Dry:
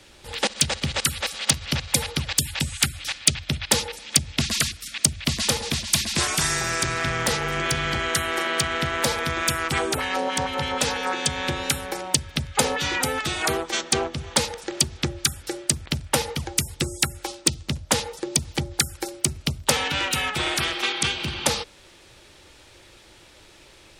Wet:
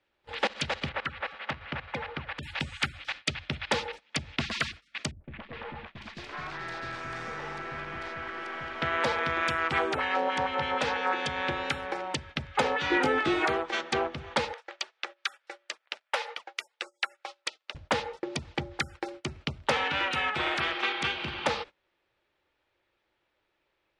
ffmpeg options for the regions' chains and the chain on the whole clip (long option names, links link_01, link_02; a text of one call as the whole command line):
ffmpeg -i in.wav -filter_complex "[0:a]asettb=1/sr,asplit=3[link_01][link_02][link_03];[link_01]atrim=end=0.894[link_04];[link_02]atrim=start=0.89:end=2.43,asetpts=PTS-STARTPTS,afade=type=in:duration=0.004:curve=qsin,afade=type=out:start_time=1.536:duration=0.004:curve=qsin,lowpass=1700,tiltshelf=frequency=1100:gain=-4,acompressor=mode=upward:threshold=-32dB:ratio=2.5:attack=3.2:release=140:knee=2.83:detection=peak[link_05];[link_03]atrim=start=2.426[link_06];[link_04][link_05]acrossfade=duration=0.004:curve1=hsin:curve2=qsin[link_07];[link_07][link_06]acrossfade=duration=0.004:curve1=qsin:curve2=hsin,asettb=1/sr,asplit=3[link_08][link_09][link_10];[link_08]atrim=end=5.114[link_11];[link_09]atrim=start=5.11:end=8.82,asetpts=PTS-STARTPTS,afade=type=in:duration=0.004:curve=qsin,afade=type=out:start_time=3.706:duration=0.004:curve=qsin,aemphasis=mode=reproduction:type=50fm,aeval=exprs='(tanh(31.6*val(0)+0.35)-tanh(0.35))/31.6':channel_layout=same,acrossover=split=510|3100[link_12][link_13][link_14];[link_13]adelay=130[link_15];[link_14]adelay=750[link_16];[link_12][link_15][link_16]amix=inputs=3:normalize=0,atrim=end_sample=163611[link_17];[link_10]atrim=start=8.816[link_18];[link_11][link_17]acrossfade=duration=0.004:curve1=hsin:curve2=qsin[link_19];[link_19][link_18]acrossfade=duration=0.004:curve1=qsin:curve2=hsin,asettb=1/sr,asplit=3[link_20][link_21][link_22];[link_20]atrim=end=12.904[link_23];[link_21]atrim=start=12.9:end=13.45,asetpts=PTS-STARTPTS,afade=type=in:duration=0.004:curve=qsin,afade=type=out:start_time=0.546:duration=0.004:curve=qsin,equalizer=frequency=340:width=1.6:gain=12,asplit=2[link_24][link_25];[link_25]adelay=20,volume=-6dB[link_26];[link_24][link_26]amix=inputs=2:normalize=0,atrim=end_sample=24255[link_27];[link_22]atrim=start=13.446[link_28];[link_23][link_27]acrossfade=duration=0.004:curve1=hsin:curve2=qsin[link_29];[link_29][link_28]acrossfade=duration=0.004:curve1=qsin:curve2=hsin,asettb=1/sr,asplit=3[link_30][link_31][link_32];[link_30]atrim=end=14.534[link_33];[link_31]atrim=start=14.53:end=17.75,asetpts=PTS-STARTPTS,afade=type=in:duration=0.004:curve=qsin,afade=type=out:start_time=3.216:duration=0.004:curve=qsin,highpass=frequency=580:width=0.5412,highpass=frequency=580:width=1.3066,equalizer=frequency=800:width_type=o:width=0.65:gain=-4[link_34];[link_32]atrim=start=17.746[link_35];[link_33][link_34]acrossfade=duration=0.004:curve1=hsin:curve2=qsin[link_36];[link_36][link_35]acrossfade=duration=0.004:curve1=qsin:curve2=hsin,lowpass=2300,agate=range=-21dB:threshold=-39dB:ratio=16:detection=peak,lowshelf=frequency=300:gain=-11.5" out.wav